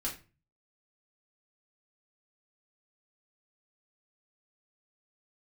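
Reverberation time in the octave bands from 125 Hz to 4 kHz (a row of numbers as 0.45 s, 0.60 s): 0.65 s, 0.45 s, 0.35 s, 0.30 s, 0.30 s, 0.25 s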